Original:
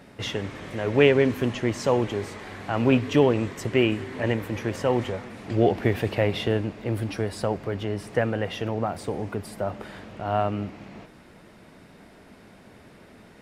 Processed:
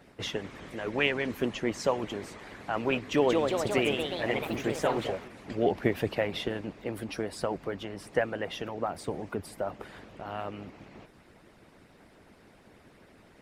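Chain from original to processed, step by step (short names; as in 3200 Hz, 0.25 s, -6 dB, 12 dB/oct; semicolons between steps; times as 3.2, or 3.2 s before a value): harmonic-percussive split harmonic -15 dB; 2.97–5.34 echoes that change speed 0.198 s, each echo +2 st, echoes 3; gain -1.5 dB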